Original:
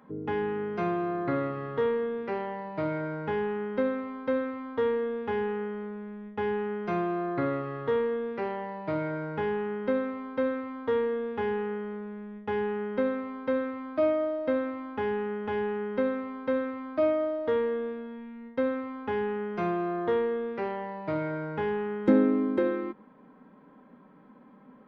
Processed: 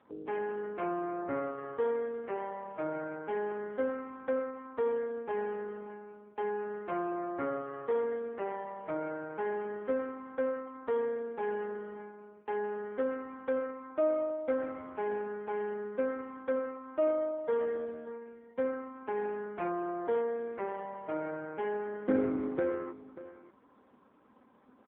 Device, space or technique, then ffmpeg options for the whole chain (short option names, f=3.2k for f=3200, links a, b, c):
satellite phone: -filter_complex "[0:a]asplit=3[a][b][c];[a]afade=t=out:st=15.48:d=0.02[d];[b]highpass=41,afade=t=in:st=15.48:d=0.02,afade=t=out:st=16.86:d=0.02[e];[c]afade=t=in:st=16.86:d=0.02[f];[d][e][f]amix=inputs=3:normalize=0,highpass=310,lowpass=3.2k,aecho=1:1:586:0.158,volume=-2.5dB" -ar 8000 -c:a libopencore_amrnb -b:a 5150